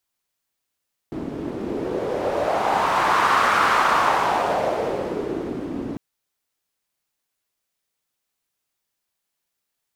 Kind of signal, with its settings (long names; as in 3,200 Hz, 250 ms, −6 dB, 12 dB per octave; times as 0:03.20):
wind from filtered noise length 4.85 s, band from 280 Hz, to 1,200 Hz, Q 2.7, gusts 1, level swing 11.5 dB